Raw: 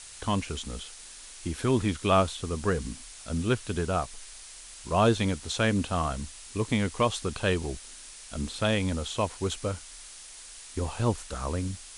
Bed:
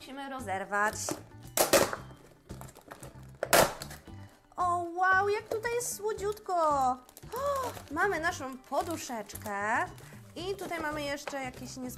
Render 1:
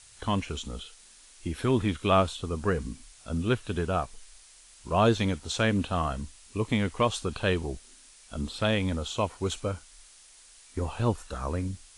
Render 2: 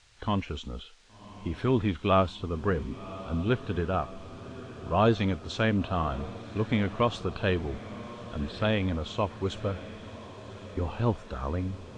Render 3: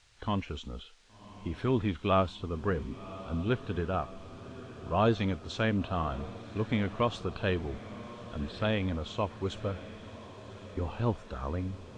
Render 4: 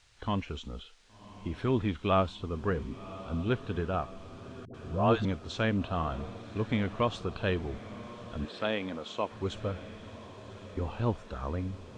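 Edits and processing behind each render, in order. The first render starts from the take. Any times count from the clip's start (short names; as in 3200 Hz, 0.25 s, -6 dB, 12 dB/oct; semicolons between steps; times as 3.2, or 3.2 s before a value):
noise print and reduce 8 dB
air absorption 150 m; diffused feedback echo 1.11 s, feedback 63%, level -15 dB
gain -3 dB
4.65–5.25 dispersion highs, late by 92 ms, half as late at 540 Hz; 8.45–9.32 HPF 250 Hz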